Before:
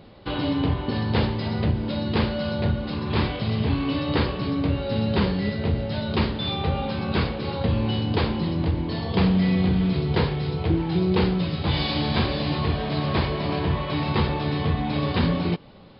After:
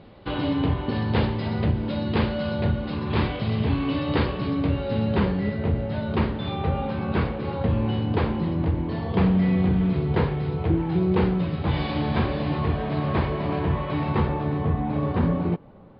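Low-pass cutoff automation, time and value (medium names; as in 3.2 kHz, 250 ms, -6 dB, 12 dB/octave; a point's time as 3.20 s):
4.68 s 3.4 kHz
5.39 s 2.1 kHz
14.03 s 2.1 kHz
14.60 s 1.3 kHz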